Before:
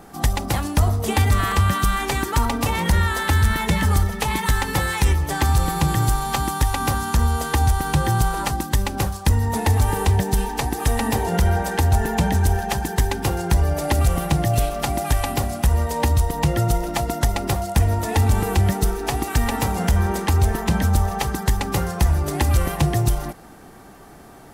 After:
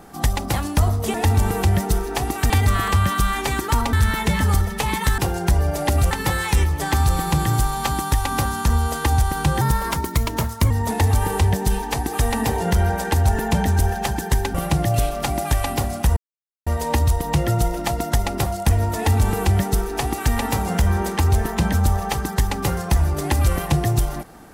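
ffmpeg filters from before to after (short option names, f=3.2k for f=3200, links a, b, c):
-filter_complex "[0:a]asplit=10[a][b][c][d][e][f][g][h][i][j];[a]atrim=end=1.142[k];[b]atrim=start=18.058:end=19.422[l];[c]atrim=start=1.138:end=2.572[m];[d]atrim=start=3.348:end=4.602[n];[e]atrim=start=13.208:end=14.142[o];[f]atrim=start=4.598:end=8.104[p];[g]atrim=start=8.1:end=9.37,asetpts=PTS-STARTPTS,asetrate=51156,aresample=44100[q];[h]atrim=start=9.366:end=13.212[r];[i]atrim=start=14.138:end=15.76,asetpts=PTS-STARTPTS,afade=t=out:st=1.618:d=0.004:c=hsin,apad=pad_dur=0.5[s];[j]atrim=start=15.76,asetpts=PTS-STARTPTS,afade=t=in:d=0.004:c=hsin[t];[k][l]acrossfade=d=0.004:c1=hsin:c2=hsin[u];[u][m]acrossfade=d=0.004:c1=hsin:c2=hsin[v];[v][n]acrossfade=d=0.004:c1=hsin:c2=hsin[w];[w][o]acrossfade=d=0.004:c1=hsin:c2=hsin[x];[x][p]acrossfade=d=0.004:c1=hsin:c2=hsin[y];[y][q]acrossfade=d=0.004:c1=hsin:c2=hsin[z];[z][r]acrossfade=d=0.004:c1=hsin:c2=hsin[aa];[s][t]concat=n=2:v=0:a=1[ab];[aa][ab]acrossfade=d=0.004:c1=hsin:c2=hsin"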